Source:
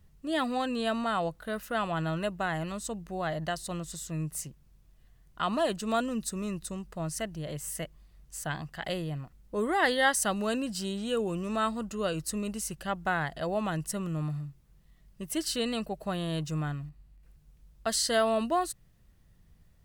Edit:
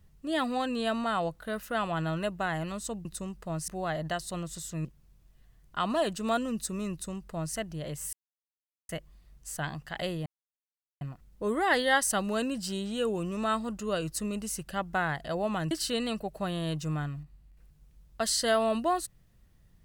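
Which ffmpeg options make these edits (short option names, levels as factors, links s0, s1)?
-filter_complex "[0:a]asplit=7[s0][s1][s2][s3][s4][s5][s6];[s0]atrim=end=3.052[s7];[s1]atrim=start=6.548:end=7.182[s8];[s2]atrim=start=3.048:end=4.222[s9];[s3]atrim=start=4.478:end=7.76,asetpts=PTS-STARTPTS,afade=t=out:st=3.278:d=0.004:c=hsin,apad=pad_dur=0.76[s10];[s4]atrim=start=7.76:end=9.13,asetpts=PTS-STARTPTS,afade=t=in:d=0.004:c=hsin,afade=t=out:st=1.366:d=0.004:c=hsin,apad=pad_dur=0.75[s11];[s5]atrim=start=9.13:end=13.832,asetpts=PTS-STARTPTS,afade=t=in:d=0.004:c=hsin[s12];[s6]atrim=start=15.368[s13];[s7][s8]acrossfade=d=0.004:c1=hsin:c2=hsin[s14];[s14][s9]acrossfade=d=0.004:c1=hsin:c2=hsin[s15];[s10][s11][s12]concat=n=3:v=0:a=1[s16];[s15][s16]acrossfade=d=0.004:c1=hsin:c2=hsin[s17];[s17][s13]acrossfade=d=0.004:c1=hsin:c2=hsin"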